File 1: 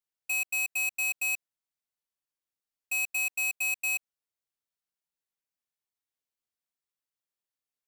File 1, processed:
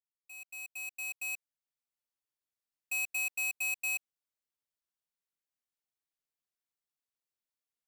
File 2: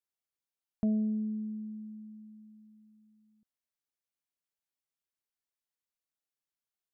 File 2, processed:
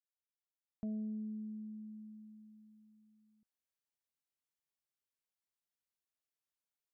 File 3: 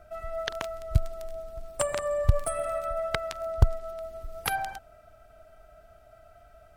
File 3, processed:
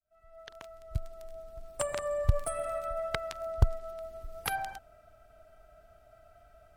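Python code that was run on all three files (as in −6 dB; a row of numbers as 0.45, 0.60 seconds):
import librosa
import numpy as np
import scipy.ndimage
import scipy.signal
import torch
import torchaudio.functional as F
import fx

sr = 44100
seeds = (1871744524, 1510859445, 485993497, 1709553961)

y = fx.fade_in_head(x, sr, length_s=2.0)
y = F.gain(torch.from_numpy(y), -4.0).numpy()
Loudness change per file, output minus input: −6.0, −10.0, −3.5 LU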